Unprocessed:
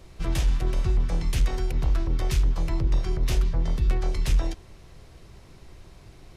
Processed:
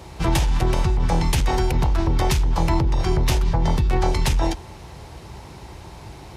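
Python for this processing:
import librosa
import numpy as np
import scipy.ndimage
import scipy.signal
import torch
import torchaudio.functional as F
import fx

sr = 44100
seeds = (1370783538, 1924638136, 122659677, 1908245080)

p1 = scipy.signal.sosfilt(scipy.signal.butter(4, 46.0, 'highpass', fs=sr, output='sos'), x)
p2 = fx.peak_eq(p1, sr, hz=870.0, db=12.0, octaves=0.29)
p3 = fx.over_compress(p2, sr, threshold_db=-27.0, ratio=-0.5)
p4 = p2 + (p3 * librosa.db_to_amplitude(1.0))
y = p4 * librosa.db_to_amplitude(2.5)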